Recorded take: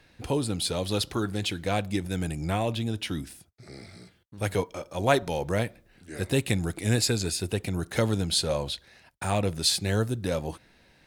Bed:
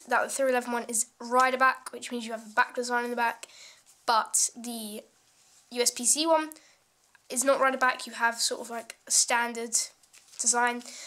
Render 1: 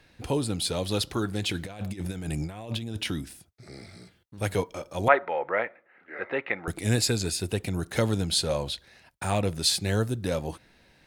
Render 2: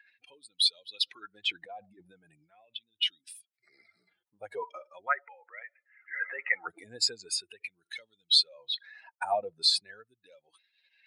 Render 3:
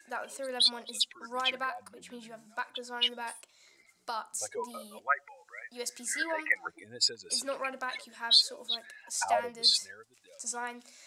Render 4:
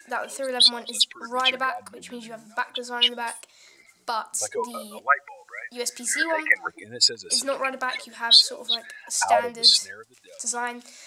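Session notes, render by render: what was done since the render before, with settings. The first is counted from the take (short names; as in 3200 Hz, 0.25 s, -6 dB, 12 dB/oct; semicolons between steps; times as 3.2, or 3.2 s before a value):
1.49–3.11 negative-ratio compressor -32 dBFS, ratio -0.5; 5.08–6.68 speaker cabinet 480–2300 Hz, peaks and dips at 530 Hz +4 dB, 850 Hz +4 dB, 1300 Hz +9 dB, 2000 Hz +9 dB
spectral contrast raised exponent 2.3; LFO high-pass sine 0.4 Hz 840–3300 Hz
add bed -12 dB
gain +8.5 dB; limiter -3 dBFS, peak gain reduction 1 dB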